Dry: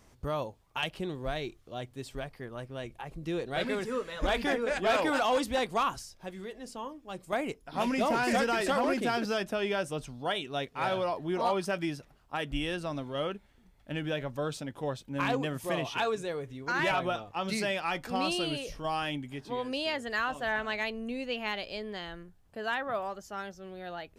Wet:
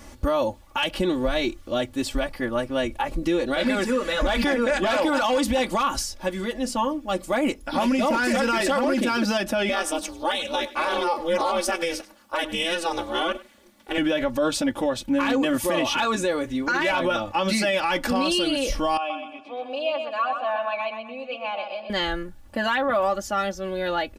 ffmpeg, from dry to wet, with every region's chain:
-filter_complex "[0:a]asettb=1/sr,asplit=3[s0][s1][s2];[s0]atrim=end=9.694[s3];[s1]atrim=start=9.69:end=13.98,asetpts=PTS-STARTPTS,afade=t=in:d=0.004:c=qsin,afade=t=out:st=4.286:d=0.004:c=qsin,aeval=exprs='val(0)*sin(2*PI*170*n/s)':c=same,bass=f=250:g=-15,treble=f=4000:g=5,aecho=1:1:99:0.0891,atrim=end_sample=189189[s4];[s2]atrim=start=13.976[s5];[s3][s4]acrossfade=d=0.004:c1=hsin:c2=qsin[s6];[s6][s5]acrossfade=d=0.004:c1=qsin:c2=hsin,asettb=1/sr,asplit=3[s7][s8][s9];[s7]atrim=end=18.974[s10];[s8]atrim=start=18.97:end=21.9,asetpts=PTS-STARTPTS,afade=t=in:d=0.004:c=qsin,afade=t=out:st=2.926:d=0.004:c=qsin,asplit=3[s11][s12][s13];[s11]bandpass=f=730:t=q:w=8,volume=1[s14];[s12]bandpass=f=1090:t=q:w=8,volume=0.501[s15];[s13]bandpass=f=2440:t=q:w=8,volume=0.355[s16];[s14][s15][s16]amix=inputs=3:normalize=0,aecho=1:1:126|252|378|504:0.473|0.17|0.0613|0.0221,atrim=end_sample=129213[s17];[s9]atrim=start=21.896[s18];[s10][s17]acrossfade=d=0.004:c1=hsin:c2=qsin[s19];[s19][s18]acrossfade=d=0.004:c1=qsin:c2=hsin,acontrast=82,aecho=1:1:3.5:0.93,alimiter=limit=0.0944:level=0:latency=1:release=82,volume=2"

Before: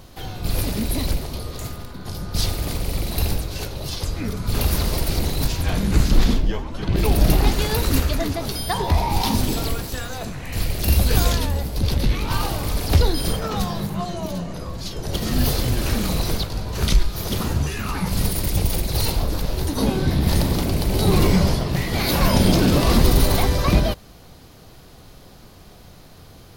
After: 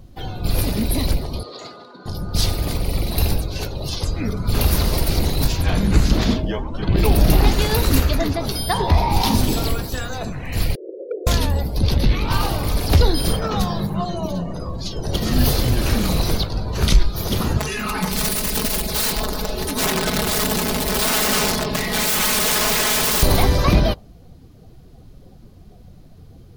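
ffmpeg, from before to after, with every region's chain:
-filter_complex "[0:a]asettb=1/sr,asplit=3[s0][s1][s2];[s0]atrim=end=1.434[s3];[s1]atrim=start=1.43:end=2.06,asetpts=PTS-STARTPTS,afade=t=in:d=0.004:c=qsin,afade=t=out:st=0.626:d=0.004:c=qsin,highpass=360,lowpass=5600,equalizer=f=4400:t=o:w=0.59:g=4[s4];[s2]atrim=start=2.056[s5];[s3][s4]acrossfade=d=0.004:c1=hsin:c2=qsin[s6];[s6][s5]acrossfade=d=0.004:c1=qsin:c2=hsin,asettb=1/sr,asplit=3[s7][s8][s9];[s7]atrim=end=6.134[s10];[s8]atrim=start=6.13:end=6.59,asetpts=PTS-STARTPTS,afade=t=in:d=0.004:c=qsin,afade=t=out:st=0.456:d=0.004:c=qsin,highpass=61,aeval=exprs='val(0)+0.0141*sin(2*PI*630*n/s)':c=same,acrusher=bits=8:mode=log:mix=0:aa=0.000001[s11];[s9]atrim=start=6.586[s12];[s10][s11]acrossfade=d=0.004:c1=hsin:c2=qsin[s13];[s13][s12]acrossfade=d=0.004:c1=qsin:c2=hsin,asettb=1/sr,asplit=3[s14][s15][s16];[s14]atrim=end=10.754[s17];[s15]atrim=start=10.75:end=11.27,asetpts=PTS-STARTPTS,afade=t=in:d=0.004:c=qsin,afade=t=out:st=0.516:d=0.004:c=qsin,asuperpass=centerf=440:order=8:qfactor=2.1,aeval=exprs='0.0891*(abs(mod(val(0)/0.0891+3,4)-2)-1)':c=same[s18];[s16]atrim=start=11.266[s19];[s17][s18]acrossfade=d=0.004:c1=hsin:c2=qsin[s20];[s20][s19]acrossfade=d=0.004:c1=qsin:c2=hsin,asettb=1/sr,asplit=3[s21][s22][s23];[s21]atrim=end=17.574[s24];[s22]atrim=start=17.57:end=23.23,asetpts=PTS-STARTPTS,afade=t=in:d=0.004:c=qsin,afade=t=out:st=5.656:d=0.004:c=qsin,lowshelf=f=160:g=-10,aeval=exprs='(mod(8.41*val(0)+1,2)-1)/8.41':c=same,aecho=1:1:4.7:0.72,atrim=end_sample=249606[s25];[s23]atrim=start=23.226[s26];[s24][s25]acrossfade=d=0.004:c1=hsin:c2=qsin[s27];[s27][s26]acrossfade=d=0.004:c1=qsin:c2=hsin,afftdn=nr=15:nf=-41,alimiter=level_in=2:limit=0.891:release=50:level=0:latency=1,volume=0.708"

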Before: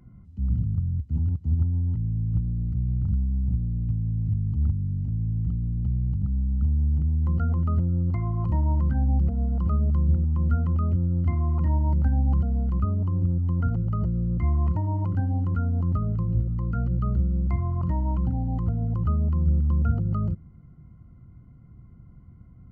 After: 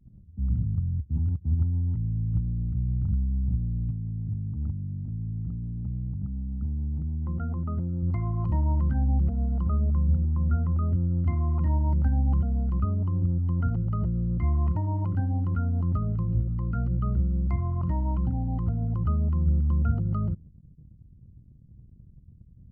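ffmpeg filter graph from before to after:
-filter_complex "[0:a]asettb=1/sr,asplit=3[s0][s1][s2];[s0]atrim=end=3.904[s3];[s1]atrim=start=3.9:end=8.03,asetpts=PTS-STARTPTS,afade=t=in:d=0.004:c=qsin,afade=t=out:st=4.126:d=0.004:c=qsin,lowpass=f=1200:p=1,lowshelf=f=86:g=-10.5[s4];[s2]atrim=start=8.026[s5];[s3][s4]acrossfade=d=0.004:c1=hsin:c2=qsin[s6];[s6][s5]acrossfade=d=0.004:c1=qsin:c2=hsin,asettb=1/sr,asplit=3[s7][s8][s9];[s7]atrim=end=9.634[s10];[s8]atrim=start=9.63:end=10.93,asetpts=PTS-STARTPTS,afade=t=in:d=0.004:c=qsin,afade=t=out:st=1.296:d=0.004:c=qsin,lowpass=1600,bandreject=f=50:t=h:w=6,bandreject=f=100:t=h:w=6,bandreject=f=150:t=h:w=6,bandreject=f=200:t=h:w=6,bandreject=f=250:t=h:w=6,bandreject=f=300:t=h:w=6,bandreject=f=350:t=h:w=6,bandreject=f=400:t=h:w=6,bandreject=f=450:t=h:w=6,bandreject=f=500:t=h:w=6[s11];[s9]atrim=start=10.926[s12];[s10][s11]acrossfade=d=0.004:c1=hsin:c2=qsin[s13];[s13][s12]acrossfade=d=0.004:c1=qsin:c2=hsin,bandreject=f=490:w=12,anlmdn=0.0398,volume=0.841"

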